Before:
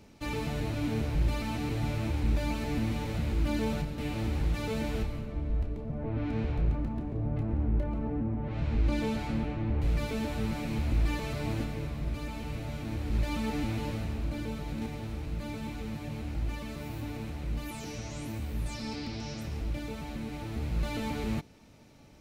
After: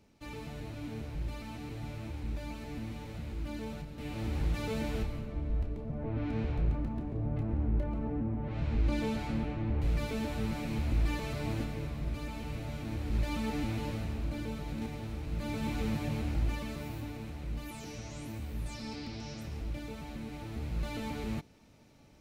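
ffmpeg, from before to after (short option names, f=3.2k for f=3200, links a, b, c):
-af "volume=5dB,afade=t=in:st=3.86:d=0.57:silence=0.421697,afade=t=in:st=15.25:d=0.59:silence=0.446684,afade=t=out:st=15.84:d=1.31:silence=0.354813"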